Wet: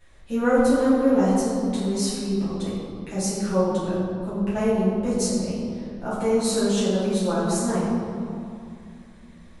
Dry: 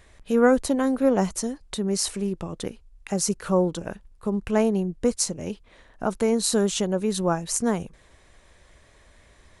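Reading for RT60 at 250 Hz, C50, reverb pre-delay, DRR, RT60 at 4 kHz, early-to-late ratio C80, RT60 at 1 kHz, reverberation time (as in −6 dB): 3.5 s, −1.5 dB, 6 ms, −12.0 dB, 1.4 s, 0.5 dB, 2.5 s, 2.5 s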